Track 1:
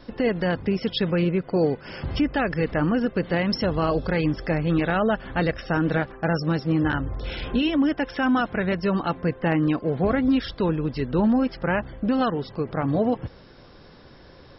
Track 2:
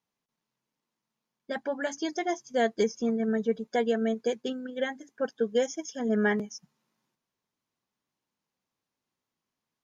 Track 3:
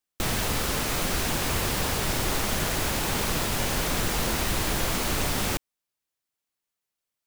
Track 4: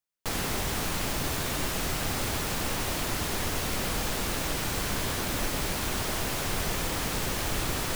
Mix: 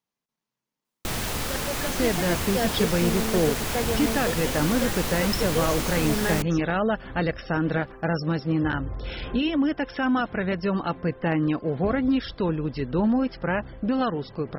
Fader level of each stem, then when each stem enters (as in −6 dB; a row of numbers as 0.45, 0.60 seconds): −2.0 dB, −2.0 dB, −2.0 dB, muted; 1.80 s, 0.00 s, 0.85 s, muted